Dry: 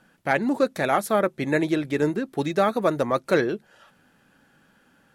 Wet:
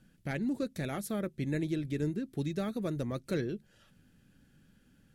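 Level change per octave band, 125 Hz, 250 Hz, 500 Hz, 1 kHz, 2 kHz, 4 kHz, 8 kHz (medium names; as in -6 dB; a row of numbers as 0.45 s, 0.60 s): -2.5 dB, -8.0 dB, -15.0 dB, -20.5 dB, -16.0 dB, -11.0 dB, -8.5 dB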